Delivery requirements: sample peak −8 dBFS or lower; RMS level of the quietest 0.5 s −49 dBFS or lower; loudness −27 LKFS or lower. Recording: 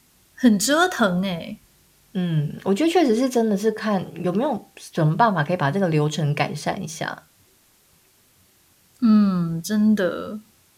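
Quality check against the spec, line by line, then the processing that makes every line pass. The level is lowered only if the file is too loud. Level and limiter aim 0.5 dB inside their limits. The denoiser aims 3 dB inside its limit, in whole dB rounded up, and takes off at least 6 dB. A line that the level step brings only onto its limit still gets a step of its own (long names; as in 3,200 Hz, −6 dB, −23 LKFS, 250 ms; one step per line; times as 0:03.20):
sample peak −5.0 dBFS: out of spec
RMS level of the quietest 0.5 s −58 dBFS: in spec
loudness −21.5 LKFS: out of spec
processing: level −6 dB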